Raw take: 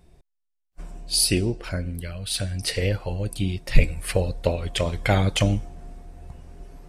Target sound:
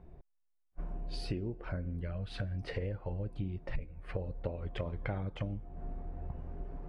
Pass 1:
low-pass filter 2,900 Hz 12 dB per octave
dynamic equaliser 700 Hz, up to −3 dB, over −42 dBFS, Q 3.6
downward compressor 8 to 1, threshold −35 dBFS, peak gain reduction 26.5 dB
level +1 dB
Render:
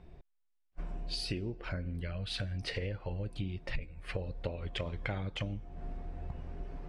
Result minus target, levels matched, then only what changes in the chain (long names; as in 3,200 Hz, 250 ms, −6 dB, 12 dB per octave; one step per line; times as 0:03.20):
4,000 Hz band +9.0 dB
change: low-pass filter 1,300 Hz 12 dB per octave